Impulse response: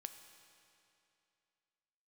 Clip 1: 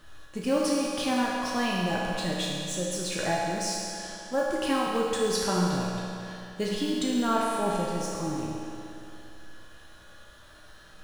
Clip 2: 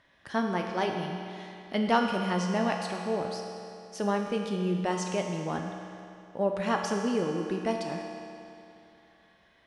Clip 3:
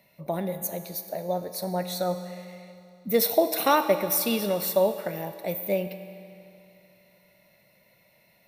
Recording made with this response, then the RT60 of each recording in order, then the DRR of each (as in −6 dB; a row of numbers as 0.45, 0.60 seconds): 3; 2.7, 2.7, 2.7 seconds; −6.0, 0.5, 7.5 decibels